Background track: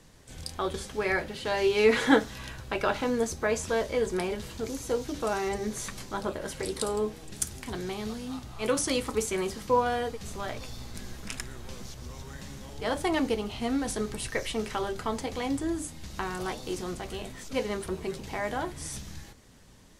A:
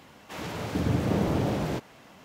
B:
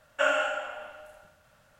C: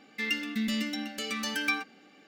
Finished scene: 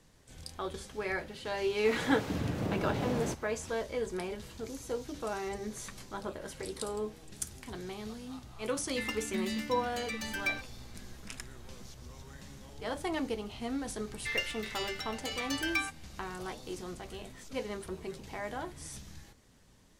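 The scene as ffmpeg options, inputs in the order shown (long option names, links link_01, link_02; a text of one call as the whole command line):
ffmpeg -i bed.wav -i cue0.wav -i cue1.wav -i cue2.wav -filter_complex "[3:a]asplit=2[link_01][link_02];[0:a]volume=-7dB[link_03];[1:a]alimiter=limit=-18dB:level=0:latency=1:release=235[link_04];[link_01]aecho=1:1:5.6:0.56[link_05];[link_02]highpass=frequency=560:width=0.5412,highpass=frequency=560:width=1.3066[link_06];[link_04]atrim=end=2.24,asetpts=PTS-STARTPTS,volume=-5dB,afade=type=in:duration=0.004:curve=hsin,afade=type=out:start_time=2.236:duration=0.004:curve=hsin,adelay=1550[link_07];[link_05]atrim=end=2.27,asetpts=PTS-STARTPTS,volume=-6.5dB,afade=type=in:duration=0.004:curve=hsin,afade=type=out:start_time=2.266:duration=0.004:curve=hsin,adelay=8780[link_08];[link_06]atrim=end=2.27,asetpts=PTS-STARTPTS,volume=-3dB,afade=type=in:duration=0.004:curve=hsin,afade=type=out:start_time=2.266:duration=0.004:curve=hsin,adelay=14070[link_09];[link_03][link_07][link_08][link_09]amix=inputs=4:normalize=0" out.wav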